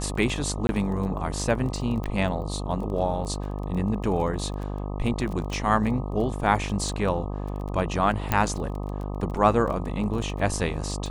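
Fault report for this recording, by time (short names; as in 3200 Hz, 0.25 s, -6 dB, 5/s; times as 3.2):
buzz 50 Hz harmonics 25 -31 dBFS
crackle 18/s -32 dBFS
0.67–0.69 gap 21 ms
2.04 pop -20 dBFS
5.53 pop
8.32 pop -8 dBFS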